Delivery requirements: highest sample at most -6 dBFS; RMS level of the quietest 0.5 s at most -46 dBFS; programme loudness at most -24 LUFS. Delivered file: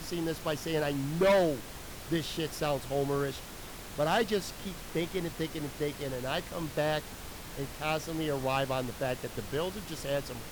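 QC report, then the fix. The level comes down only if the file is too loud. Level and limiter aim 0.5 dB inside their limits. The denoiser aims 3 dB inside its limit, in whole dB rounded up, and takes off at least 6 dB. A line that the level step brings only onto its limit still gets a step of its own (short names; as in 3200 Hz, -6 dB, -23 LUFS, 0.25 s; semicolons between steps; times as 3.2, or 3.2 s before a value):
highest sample -19.0 dBFS: OK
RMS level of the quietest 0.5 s -44 dBFS: fail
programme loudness -32.5 LUFS: OK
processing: denoiser 6 dB, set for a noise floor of -44 dBFS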